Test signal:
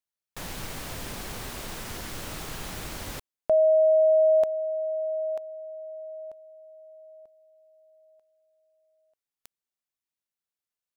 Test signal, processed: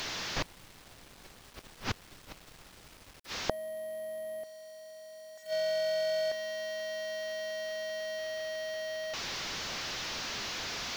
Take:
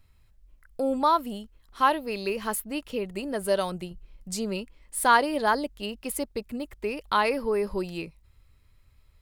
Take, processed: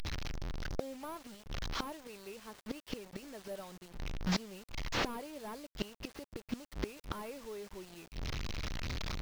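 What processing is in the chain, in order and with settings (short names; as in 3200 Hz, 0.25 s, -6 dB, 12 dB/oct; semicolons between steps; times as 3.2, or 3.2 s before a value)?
delta modulation 32 kbps, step -37.5 dBFS; flipped gate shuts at -27 dBFS, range -26 dB; bit-crush 10-bit; gain +7 dB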